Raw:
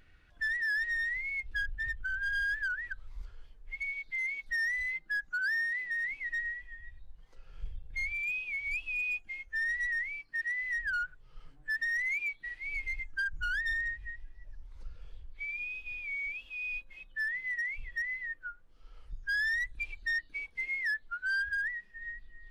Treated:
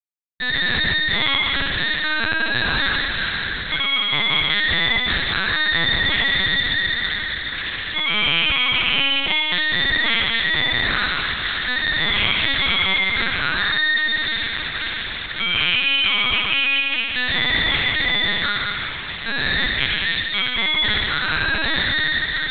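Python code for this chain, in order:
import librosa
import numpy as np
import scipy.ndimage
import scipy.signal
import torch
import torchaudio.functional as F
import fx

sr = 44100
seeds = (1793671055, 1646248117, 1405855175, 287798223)

y = fx.rattle_buzz(x, sr, strikes_db=-46.0, level_db=-38.0)
y = scipy.signal.sosfilt(scipy.signal.cheby1(3, 1.0, [550.0, 3000.0], 'bandpass', fs=sr, output='sos'), y)
y = fx.peak_eq(y, sr, hz=1600.0, db=10.0, octaves=2.4)
y = fx.echo_wet_highpass(y, sr, ms=546, feedback_pct=80, hz=1500.0, wet_db=-20.5)
y = (np.kron(scipy.signal.resample_poly(y, 1, 8), np.eye(8)[0]) * 8)[:len(y)]
y = fx.fuzz(y, sr, gain_db=32.0, gate_db=-29.0)
y = fx.echo_heads(y, sr, ms=65, heads='all three', feedback_pct=59, wet_db=-7.5)
y = fx.lpc_vocoder(y, sr, seeds[0], excitation='pitch_kept', order=8)
y = F.gain(torch.from_numpy(y), 6.5).numpy()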